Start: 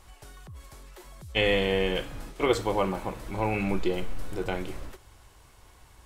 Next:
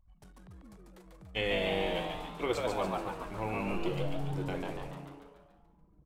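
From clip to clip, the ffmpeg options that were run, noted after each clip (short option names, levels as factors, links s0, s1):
-filter_complex "[0:a]anlmdn=0.01,asplit=8[s0][s1][s2][s3][s4][s5][s6][s7];[s1]adelay=143,afreqshift=140,volume=0.708[s8];[s2]adelay=286,afreqshift=280,volume=0.363[s9];[s3]adelay=429,afreqshift=420,volume=0.184[s10];[s4]adelay=572,afreqshift=560,volume=0.0944[s11];[s5]adelay=715,afreqshift=700,volume=0.0479[s12];[s6]adelay=858,afreqshift=840,volume=0.0245[s13];[s7]adelay=1001,afreqshift=980,volume=0.0124[s14];[s0][s8][s9][s10][s11][s12][s13][s14]amix=inputs=8:normalize=0,volume=0.376"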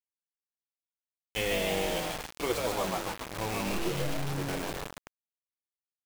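-af "acrusher=bits=5:mix=0:aa=0.000001,volume=1.12"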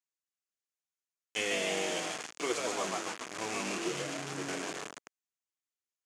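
-af "highpass=280,equalizer=f=540:t=q:w=4:g=-6,equalizer=f=870:t=q:w=4:g=-6,equalizer=f=3900:t=q:w=4:g=-4,equalizer=f=6700:t=q:w=4:g=6,lowpass=f=9200:w=0.5412,lowpass=f=9200:w=1.3066"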